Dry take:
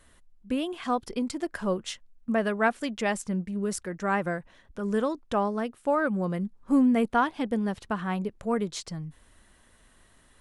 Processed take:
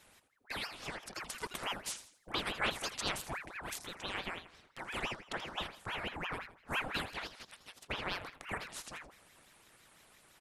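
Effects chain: 7.09–7.87 elliptic high-pass 1100 Hz; spectral gate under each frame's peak -10 dB weak; 1.22–3.03 high shelf 4900 Hz +6.5 dB; on a send: feedback echo 82 ms, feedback 36%, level -12 dB; on the sum: ring modulator with a swept carrier 1200 Hz, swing 80%, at 5.9 Hz; gain +2 dB

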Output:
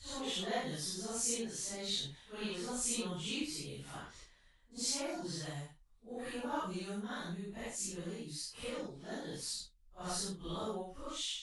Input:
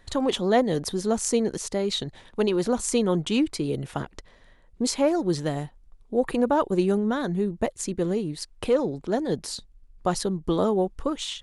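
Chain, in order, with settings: phase scrambler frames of 0.2 s; passive tone stack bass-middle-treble 5-5-5; gain +1 dB

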